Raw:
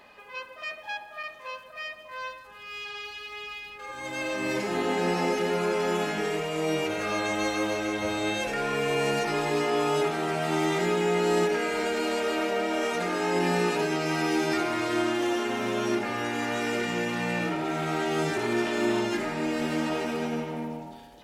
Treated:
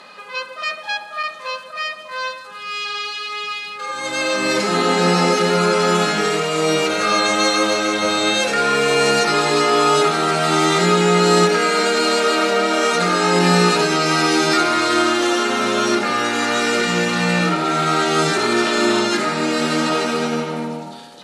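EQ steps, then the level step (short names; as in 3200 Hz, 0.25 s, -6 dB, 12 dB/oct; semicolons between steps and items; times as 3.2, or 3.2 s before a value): speaker cabinet 160–10000 Hz, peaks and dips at 180 Hz +9 dB, 510 Hz +4 dB, 1300 Hz +10 dB, 4100 Hz +8 dB; high shelf 4200 Hz +10.5 dB; +7.0 dB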